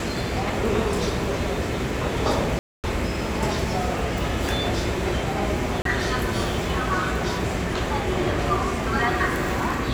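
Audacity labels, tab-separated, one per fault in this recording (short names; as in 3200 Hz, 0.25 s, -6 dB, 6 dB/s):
2.590000	2.840000	gap 0.248 s
5.820000	5.850000	gap 33 ms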